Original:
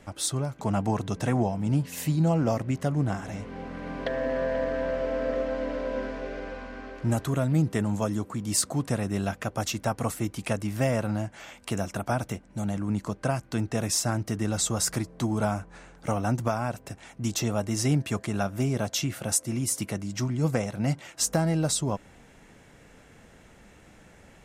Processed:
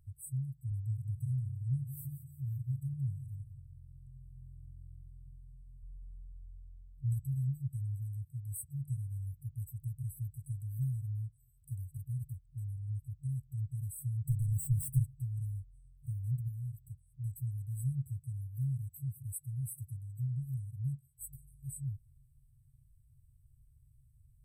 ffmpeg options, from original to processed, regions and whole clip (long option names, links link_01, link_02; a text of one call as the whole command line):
ffmpeg -i in.wav -filter_complex "[0:a]asettb=1/sr,asplit=3[link_01][link_02][link_03];[link_01]atrim=end=0.714[link_04];[link_02]atrim=start=0.71:end=5.83,asetpts=PTS-STARTPTS,afade=type=in:duration=0.004:curve=qsin,afade=type=out:start_time=5.116:duration=0.004:curve=qsin,highpass=50,aecho=1:1:176|352|528|704:0.282|0.116|0.0474|0.0194,atrim=end_sample=225792[link_05];[link_03]atrim=start=5.826[link_06];[link_04][link_05]acrossfade=duration=0.004:curve1=hsin:curve2=qsin[link_07];[link_07][link_06]acrossfade=duration=0.004:curve1=qsin:curve2=hsin,asettb=1/sr,asplit=3[link_08][link_09][link_10];[link_08]atrim=end=14.274[link_11];[link_09]atrim=start=14.27:end=15.14,asetpts=PTS-STARTPTS,afade=type=in:duration=0.004:curve=qsin,afade=type=out:start_time=0.866:duration=0.004:curve=qsin,equalizer=frequency=140:width=1.8:gain=12.5,asplit=2[link_12][link_13];[link_13]highpass=frequency=720:poles=1,volume=24dB,asoftclip=type=tanh:threshold=-9.5dB[link_14];[link_12][link_14]amix=inputs=2:normalize=0,lowpass=frequency=4700:poles=1,volume=-6dB[link_15];[link_10]atrim=start=15.136[link_16];[link_11][link_15]acrossfade=duration=0.004:curve1=hsin:curve2=qsin[link_17];[link_17][link_16]acrossfade=duration=0.004:curve1=qsin:curve2=hsin,afftfilt=real='re*(1-between(b*sr/4096,140,7900))':imag='im*(1-between(b*sr/4096,140,7900))':win_size=4096:overlap=0.75,equalizer=frequency=9100:width=1.6:gain=-13,volume=-4.5dB" out.wav